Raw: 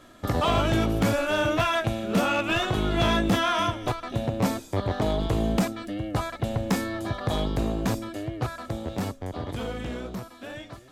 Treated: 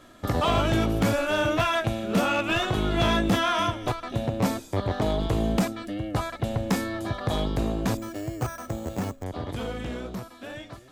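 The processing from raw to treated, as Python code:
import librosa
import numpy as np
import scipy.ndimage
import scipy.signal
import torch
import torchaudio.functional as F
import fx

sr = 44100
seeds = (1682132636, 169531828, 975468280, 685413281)

y = fx.resample_bad(x, sr, factor=6, down='filtered', up='hold', at=(7.97, 9.24))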